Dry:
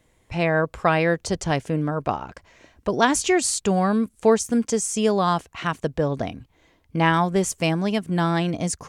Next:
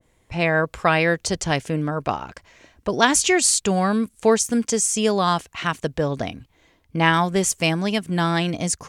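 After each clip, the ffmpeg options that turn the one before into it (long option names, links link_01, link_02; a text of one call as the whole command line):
ffmpeg -i in.wav -af "adynamicequalizer=threshold=0.02:dfrequency=1500:dqfactor=0.7:tfrequency=1500:tqfactor=0.7:attack=5:release=100:ratio=0.375:range=3:mode=boostabove:tftype=highshelf" out.wav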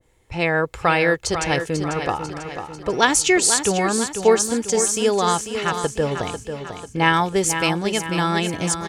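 ffmpeg -i in.wav -filter_complex "[0:a]aecho=1:1:2.3:0.38,asplit=2[link_01][link_02];[link_02]aecho=0:1:494|988|1482|1976|2470|2964:0.376|0.188|0.094|0.047|0.0235|0.0117[link_03];[link_01][link_03]amix=inputs=2:normalize=0" out.wav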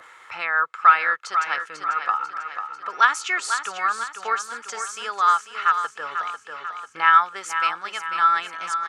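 ffmpeg -i in.wav -af "highpass=frequency=1300:width_type=q:width=7.2,aemphasis=mode=reproduction:type=bsi,acompressor=mode=upward:threshold=-22dB:ratio=2.5,volume=-6dB" out.wav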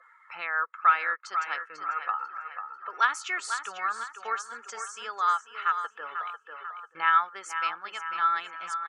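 ffmpeg -i in.wav -filter_complex "[0:a]afftdn=noise_reduction=20:noise_floor=-44,asplit=2[link_01][link_02];[link_02]adelay=932.9,volume=-22dB,highshelf=frequency=4000:gain=-21[link_03];[link_01][link_03]amix=inputs=2:normalize=0,volume=-7dB" out.wav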